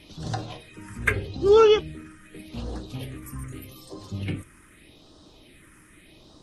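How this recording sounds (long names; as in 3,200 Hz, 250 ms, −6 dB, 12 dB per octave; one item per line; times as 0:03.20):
phaser sweep stages 4, 0.82 Hz, lowest notch 660–2,200 Hz
Opus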